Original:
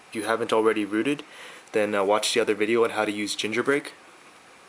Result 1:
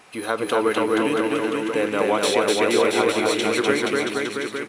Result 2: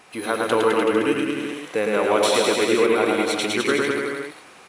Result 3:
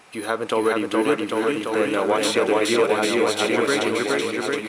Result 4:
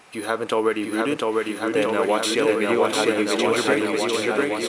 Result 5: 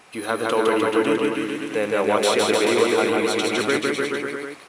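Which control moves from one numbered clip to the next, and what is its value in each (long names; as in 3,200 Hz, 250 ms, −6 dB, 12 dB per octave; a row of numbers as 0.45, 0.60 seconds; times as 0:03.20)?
bouncing-ball delay, first gap: 250, 110, 420, 700, 160 milliseconds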